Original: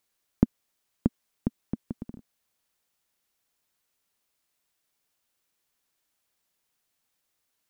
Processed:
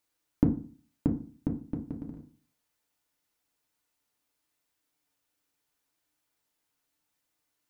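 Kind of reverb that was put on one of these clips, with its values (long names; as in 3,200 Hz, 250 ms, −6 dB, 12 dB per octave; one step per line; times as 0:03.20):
feedback delay network reverb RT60 0.4 s, low-frequency decay 1.25×, high-frequency decay 0.4×, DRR 1 dB
level −4 dB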